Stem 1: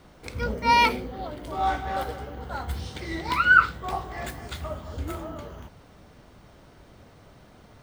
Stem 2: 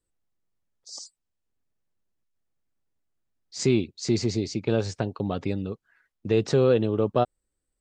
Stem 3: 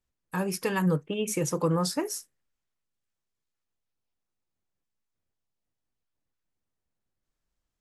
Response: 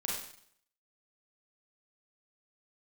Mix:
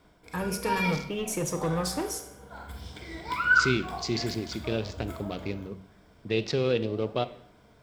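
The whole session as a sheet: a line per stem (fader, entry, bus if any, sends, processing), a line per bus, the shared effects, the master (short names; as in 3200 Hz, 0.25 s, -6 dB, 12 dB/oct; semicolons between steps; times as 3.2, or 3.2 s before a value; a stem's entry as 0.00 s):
-11.0 dB, 0.00 s, send -4.5 dB, ripple EQ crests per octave 1.7, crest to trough 7 dB; auto duck -17 dB, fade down 0.25 s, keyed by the third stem
-2.5 dB, 0.00 s, send -16 dB, Wiener smoothing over 15 samples; band shelf 3200 Hz +11 dB; flange 1.4 Hz, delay 4.6 ms, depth 8.7 ms, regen +90%
-10.0 dB, 0.00 s, send -9 dB, sample leveller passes 2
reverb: on, RT60 0.65 s, pre-delay 32 ms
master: de-hum 47.19 Hz, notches 5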